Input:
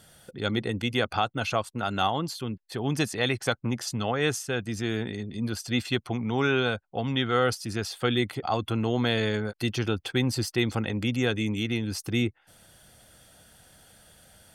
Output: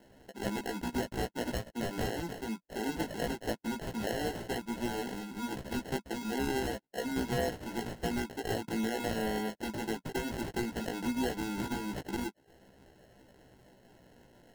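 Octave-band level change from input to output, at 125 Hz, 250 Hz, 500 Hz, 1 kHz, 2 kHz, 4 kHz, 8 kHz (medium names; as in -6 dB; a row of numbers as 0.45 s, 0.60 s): -12.5 dB, -6.0 dB, -7.0 dB, -7.0 dB, -9.0 dB, -11.5 dB, -6.5 dB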